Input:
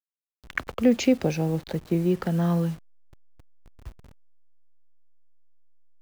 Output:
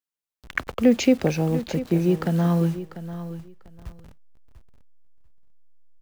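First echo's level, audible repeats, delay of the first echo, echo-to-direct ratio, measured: −13.0 dB, 2, 694 ms, −13.0 dB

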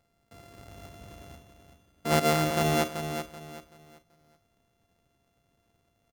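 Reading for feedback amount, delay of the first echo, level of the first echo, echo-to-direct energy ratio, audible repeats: 30%, 382 ms, −8.0 dB, −7.5 dB, 3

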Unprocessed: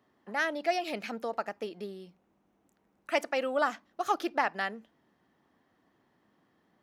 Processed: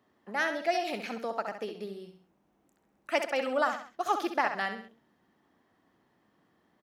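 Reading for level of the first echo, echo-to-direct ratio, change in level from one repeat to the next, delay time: −8.0 dB, −7.0 dB, −7.5 dB, 66 ms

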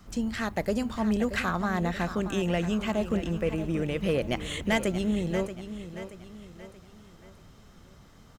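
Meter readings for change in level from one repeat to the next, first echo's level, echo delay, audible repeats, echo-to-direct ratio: −7.5 dB, −11.5 dB, 629 ms, 4, −10.5 dB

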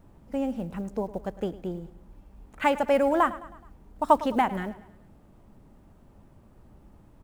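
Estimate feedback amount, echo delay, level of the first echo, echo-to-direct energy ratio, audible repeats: 50%, 106 ms, −17.0 dB, −16.0 dB, 3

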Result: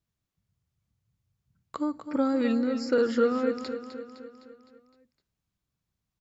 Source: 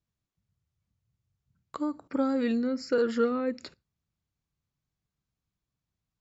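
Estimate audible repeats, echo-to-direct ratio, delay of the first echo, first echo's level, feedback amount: 5, −8.5 dB, 256 ms, −10.0 dB, 56%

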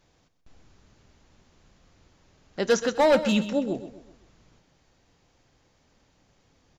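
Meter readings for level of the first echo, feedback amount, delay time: −12.5 dB, 42%, 128 ms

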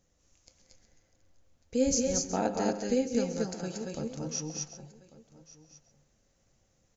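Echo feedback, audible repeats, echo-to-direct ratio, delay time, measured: repeats not evenly spaced, 7, −1.0 dB, 133 ms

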